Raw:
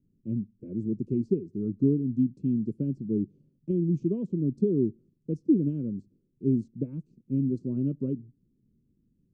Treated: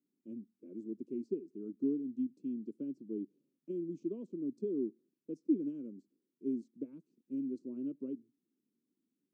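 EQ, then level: ladder high-pass 240 Hz, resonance 45%; low shelf 330 Hz -10.5 dB; bell 460 Hz -4 dB 2.1 oct; +3.5 dB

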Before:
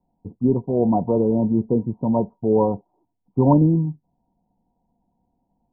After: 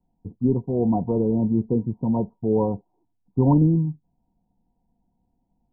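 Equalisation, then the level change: tilt -2 dB/oct; notch 590 Hz, Q 12; -6.0 dB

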